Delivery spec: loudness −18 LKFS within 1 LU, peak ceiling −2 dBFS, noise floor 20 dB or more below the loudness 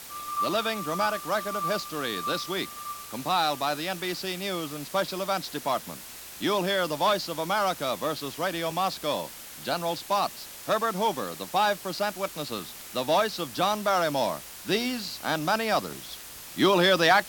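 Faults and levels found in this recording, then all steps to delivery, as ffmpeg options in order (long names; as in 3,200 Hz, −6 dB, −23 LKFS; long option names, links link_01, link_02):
background noise floor −43 dBFS; target noise floor −48 dBFS; integrated loudness −27.5 LKFS; sample peak −8.0 dBFS; target loudness −18.0 LKFS
→ -af "afftdn=noise_reduction=6:noise_floor=-43"
-af "volume=9.5dB,alimiter=limit=-2dB:level=0:latency=1"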